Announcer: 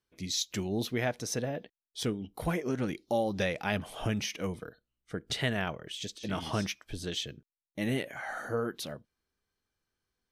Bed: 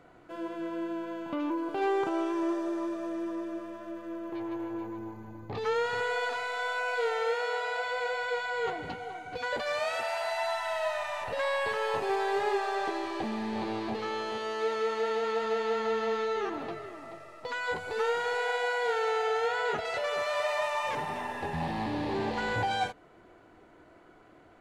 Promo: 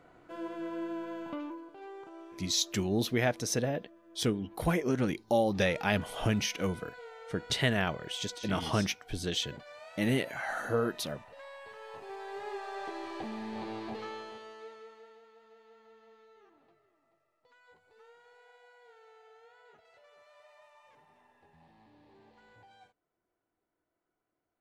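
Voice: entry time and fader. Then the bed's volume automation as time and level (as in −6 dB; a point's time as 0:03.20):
2.20 s, +2.5 dB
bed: 0:01.27 −2.5 dB
0:01.76 −18.5 dB
0:11.65 −18.5 dB
0:13.10 −6 dB
0:14.02 −6 dB
0:15.31 −29.5 dB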